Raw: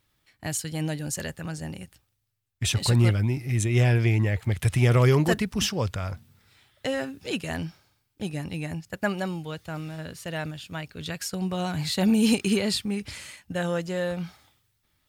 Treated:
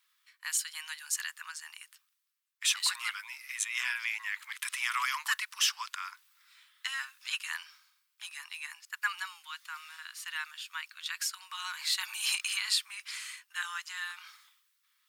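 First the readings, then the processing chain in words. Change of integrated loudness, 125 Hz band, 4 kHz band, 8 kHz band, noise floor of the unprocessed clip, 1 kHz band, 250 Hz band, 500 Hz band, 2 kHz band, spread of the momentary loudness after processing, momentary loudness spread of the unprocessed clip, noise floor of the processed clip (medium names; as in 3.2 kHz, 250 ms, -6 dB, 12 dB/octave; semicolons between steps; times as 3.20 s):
-7.5 dB, under -40 dB, 0.0 dB, 0.0 dB, -73 dBFS, -4.5 dB, under -40 dB, under -40 dB, 0.0 dB, 15 LU, 15 LU, -77 dBFS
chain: steep high-pass 1 kHz 72 dB/octave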